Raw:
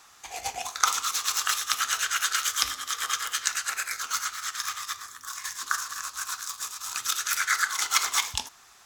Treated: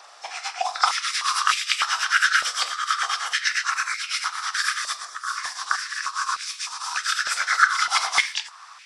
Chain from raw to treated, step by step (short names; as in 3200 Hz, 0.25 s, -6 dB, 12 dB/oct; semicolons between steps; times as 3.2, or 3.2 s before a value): nonlinear frequency compression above 3600 Hz 1.5:1; 4.54–5.05 high shelf 5000 Hz +9 dB; in parallel at -1 dB: compressor, threshold -39 dBFS, peak gain reduction 19.5 dB; on the sum: stepped high-pass 3.3 Hz 610–2300 Hz